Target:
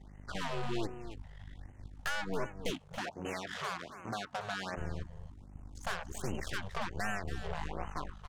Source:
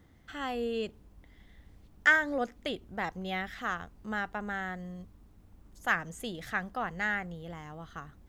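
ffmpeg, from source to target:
-filter_complex "[0:a]equalizer=f=900:w=1.9:g=8,afreqshift=-100,aeval=exprs='val(0)+0.00251*(sin(2*PI*50*n/s)+sin(2*PI*2*50*n/s)/2+sin(2*PI*3*50*n/s)/3+sin(2*PI*4*50*n/s)/4+sin(2*PI*5*50*n/s)/5)':c=same,acontrast=55,lowpass=f=9.1k:w=0.5412,lowpass=f=9.1k:w=1.3066,acompressor=threshold=-25dB:ratio=16,bandreject=f=660:w=12,asoftclip=type=tanh:threshold=-24dB,aeval=exprs='0.0631*(cos(1*acos(clip(val(0)/0.0631,-1,1)))-cos(1*PI/2))+0.0251*(cos(4*acos(clip(val(0)/0.0631,-1,1)))-cos(4*PI/2))+0.00224*(cos(8*acos(clip(val(0)/0.0631,-1,1)))-cos(8*PI/2))':c=same,asettb=1/sr,asplit=3[a][b][c];[a]atrim=end=2.704[d];[b]atrim=start=2.7:end=4.77,asetpts=PTS-STARTPTS,afade=t=in:d=0.004:c=qsin,afade=t=out:st=2.066:d=0.004:c=qsin,highpass=170[e];[c]atrim=start=4.766[f];[d][e]acrossfade=d=0.004:c1=hsin:c2=qsin[g];[g][f]acrossfade=d=0.004:c1=qsin:c2=hsin,aecho=1:1:279:0.251,afftfilt=real='re*(1-between(b*sr/1024,250*pow(4400/250,0.5+0.5*sin(2*PI*1.3*pts/sr))/1.41,250*pow(4400/250,0.5+0.5*sin(2*PI*1.3*pts/sr))*1.41))':imag='im*(1-between(b*sr/1024,250*pow(4400/250,0.5+0.5*sin(2*PI*1.3*pts/sr))/1.41,250*pow(4400/250,0.5+0.5*sin(2*PI*1.3*pts/sr))*1.41))':win_size=1024:overlap=0.75,volume=-5.5dB"

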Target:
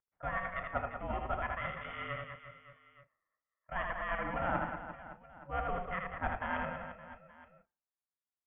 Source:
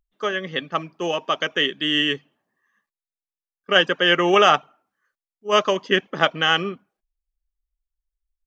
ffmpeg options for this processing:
-filter_complex "[0:a]areverse,acompressor=threshold=-29dB:ratio=6,areverse,highpass=f=490:t=q:w=0.5412,highpass=f=490:t=q:w=1.307,lowpass=f=2.1k:t=q:w=0.5176,lowpass=f=2.1k:t=q:w=0.7071,lowpass=f=2.1k:t=q:w=1.932,afreqshift=-210,asplit=2[a][b];[b]adelay=35,volume=-13dB[c];[a][c]amix=inputs=2:normalize=0,aecho=1:1:80|192|348.8|568.3|875.6:0.631|0.398|0.251|0.158|0.1,aeval=exprs='val(0)*sin(2*PI*350*n/s)':c=same"

